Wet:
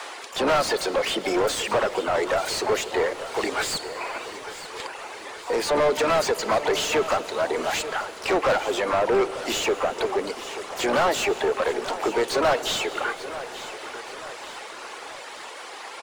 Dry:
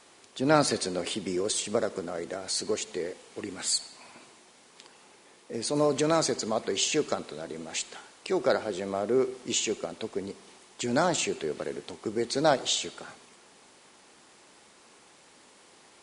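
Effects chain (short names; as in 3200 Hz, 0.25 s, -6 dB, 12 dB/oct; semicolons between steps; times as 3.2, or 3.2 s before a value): octaver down 2 oct, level +2 dB; reverb removal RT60 1.2 s; HPF 460 Hz 12 dB/oct; in parallel at +0.5 dB: compressor 6:1, threshold -41 dBFS, peak gain reduction 21.5 dB; on the sum: harmoniser +7 st -17 dB, +12 st -14 dB; overdrive pedal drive 29 dB, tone 1700 Hz, clips at -9.5 dBFS; feedback echo 0.887 s, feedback 50%, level -14 dB; on a send at -14.5 dB: reverb RT60 5.6 s, pre-delay 0.119 s; on the sum: gain -2.5 dB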